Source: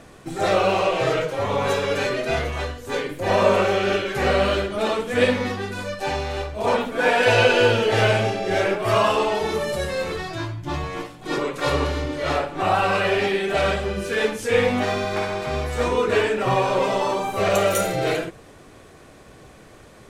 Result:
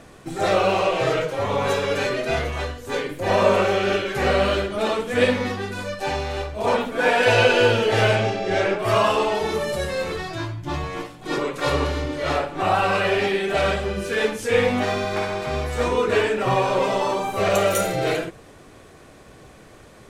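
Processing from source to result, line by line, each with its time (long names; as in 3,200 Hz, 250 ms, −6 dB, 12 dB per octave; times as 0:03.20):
0:08.15–0:08.79: low-pass filter 7,300 Hz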